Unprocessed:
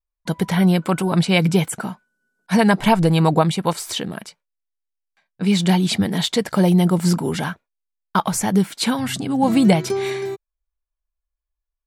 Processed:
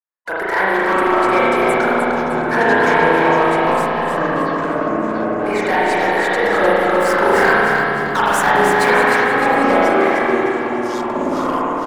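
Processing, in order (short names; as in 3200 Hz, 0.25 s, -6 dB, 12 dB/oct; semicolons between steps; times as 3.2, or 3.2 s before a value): HPF 430 Hz 24 dB/oct; resonant high shelf 2400 Hz -11 dB, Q 3; 7–8.9 sample leveller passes 2; limiter -10.5 dBFS, peak gain reduction 9.5 dB; sample leveller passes 2; 3.86–5.46 air absorption 420 m; feedback echo 0.305 s, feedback 44%, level -6 dB; spring tank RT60 2.4 s, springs 36 ms, chirp 65 ms, DRR -8 dB; echoes that change speed 0.332 s, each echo -7 st, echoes 2, each echo -6 dB; gain -4 dB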